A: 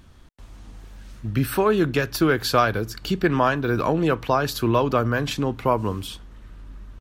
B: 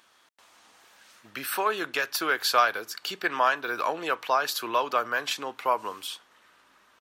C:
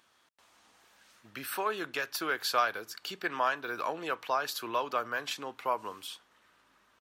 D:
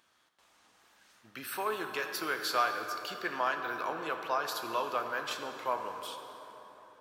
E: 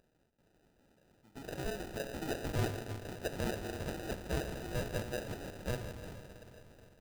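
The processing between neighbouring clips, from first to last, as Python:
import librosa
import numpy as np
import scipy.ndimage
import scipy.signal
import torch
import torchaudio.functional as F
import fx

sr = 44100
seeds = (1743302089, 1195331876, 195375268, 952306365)

y1 = scipy.signal.sosfilt(scipy.signal.butter(2, 790.0, 'highpass', fs=sr, output='sos'), x)
y2 = fx.low_shelf(y1, sr, hz=210.0, db=8.0)
y2 = F.gain(torch.from_numpy(y2), -6.5).numpy()
y3 = fx.rev_plate(y2, sr, seeds[0], rt60_s=4.0, hf_ratio=0.5, predelay_ms=0, drr_db=4.5)
y3 = F.gain(torch.from_numpy(y3), -2.5).numpy()
y4 = fx.sample_hold(y3, sr, seeds[1], rate_hz=1100.0, jitter_pct=0)
y4 = F.gain(torch.from_numpy(y4), -4.0).numpy()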